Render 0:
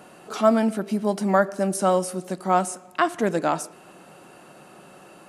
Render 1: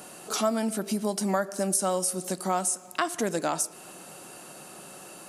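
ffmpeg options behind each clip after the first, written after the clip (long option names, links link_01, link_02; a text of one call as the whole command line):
ffmpeg -i in.wav -af "bass=frequency=250:gain=-1,treble=frequency=4000:gain=13,acompressor=threshold=-26dB:ratio=2.5" out.wav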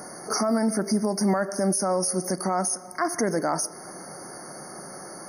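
ffmpeg -i in.wav -af "alimiter=limit=-21dB:level=0:latency=1:release=17,afftfilt=real='re*eq(mod(floor(b*sr/1024/2200),2),0)':imag='im*eq(mod(floor(b*sr/1024/2200),2),0)':win_size=1024:overlap=0.75,volume=6.5dB" out.wav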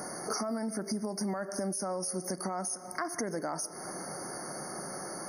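ffmpeg -i in.wav -af "acompressor=threshold=-32dB:ratio=5" out.wav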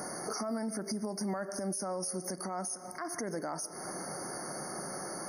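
ffmpeg -i in.wav -af "alimiter=level_in=2.5dB:limit=-24dB:level=0:latency=1:release=121,volume=-2.5dB" out.wav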